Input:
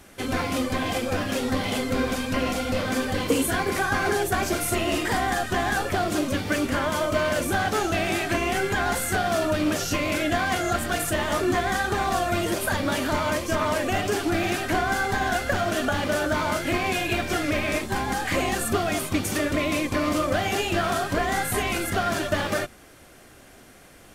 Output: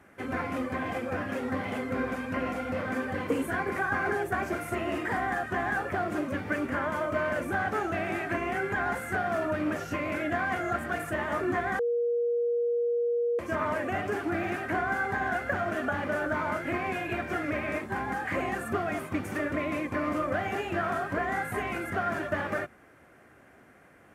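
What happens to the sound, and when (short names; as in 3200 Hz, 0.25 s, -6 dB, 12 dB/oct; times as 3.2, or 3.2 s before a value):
11.79–13.39 bleep 475 Hz -18.5 dBFS
whole clip: HPF 83 Hz; resonant high shelf 2700 Hz -12 dB, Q 1.5; gain -6 dB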